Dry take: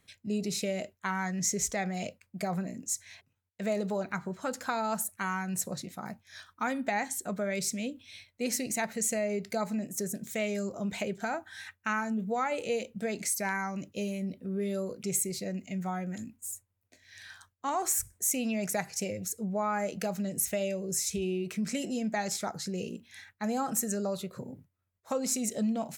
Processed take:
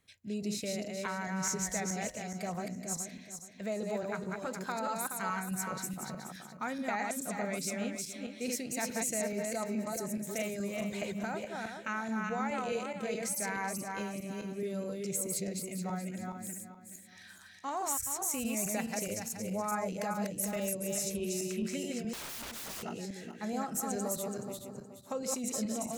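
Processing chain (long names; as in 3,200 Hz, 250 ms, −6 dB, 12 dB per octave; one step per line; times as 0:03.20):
feedback delay that plays each chunk backwards 212 ms, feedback 53%, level −2 dB
0:22.13–0:22.83: wrap-around overflow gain 32 dB
level −5.5 dB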